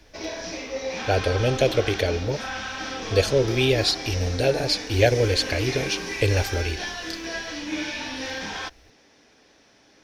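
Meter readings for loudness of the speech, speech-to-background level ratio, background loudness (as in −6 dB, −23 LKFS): −23.5 LKFS, 8.0 dB, −31.5 LKFS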